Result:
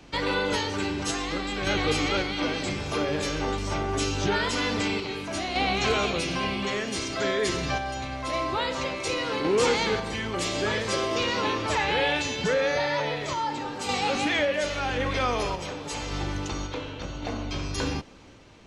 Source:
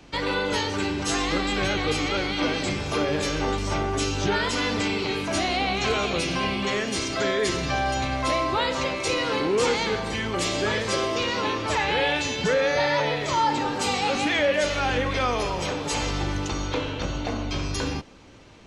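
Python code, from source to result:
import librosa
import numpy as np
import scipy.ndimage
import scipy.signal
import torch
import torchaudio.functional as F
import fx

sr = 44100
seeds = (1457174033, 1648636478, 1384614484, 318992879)

y = fx.tremolo_random(x, sr, seeds[0], hz=1.8, depth_pct=55)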